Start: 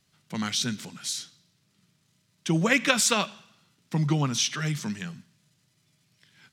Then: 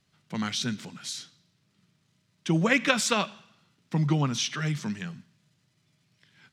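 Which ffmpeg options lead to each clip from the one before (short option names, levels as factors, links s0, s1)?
-af "lowpass=f=4000:p=1"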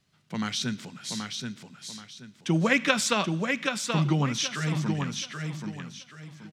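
-af "aecho=1:1:779|1558|2337|3116:0.562|0.163|0.0473|0.0137"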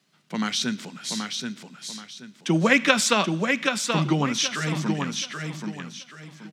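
-af "highpass=f=170:w=0.5412,highpass=f=170:w=1.3066,volume=1.68"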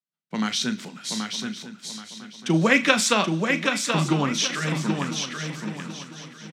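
-filter_complex "[0:a]agate=range=0.0224:threshold=0.0112:ratio=3:detection=peak,asplit=2[s0][s1];[s1]adelay=37,volume=0.251[s2];[s0][s2]amix=inputs=2:normalize=0,aecho=1:1:1000|2000|3000:0.188|0.064|0.0218"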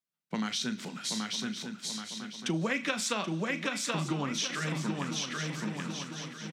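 -af "acompressor=threshold=0.0251:ratio=3"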